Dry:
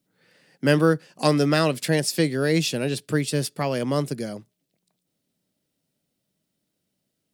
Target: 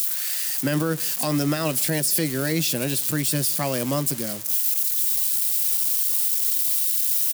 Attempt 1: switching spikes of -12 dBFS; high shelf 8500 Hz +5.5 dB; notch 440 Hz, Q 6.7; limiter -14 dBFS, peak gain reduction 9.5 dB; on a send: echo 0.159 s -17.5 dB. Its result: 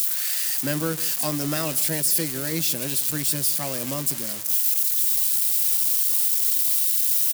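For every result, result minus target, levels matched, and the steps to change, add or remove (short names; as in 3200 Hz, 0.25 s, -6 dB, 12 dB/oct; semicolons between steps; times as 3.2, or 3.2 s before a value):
switching spikes: distortion +8 dB; echo-to-direct +7 dB
change: switching spikes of -20.5 dBFS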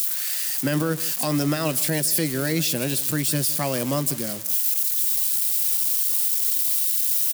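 echo-to-direct +7 dB
change: echo 0.159 s -24.5 dB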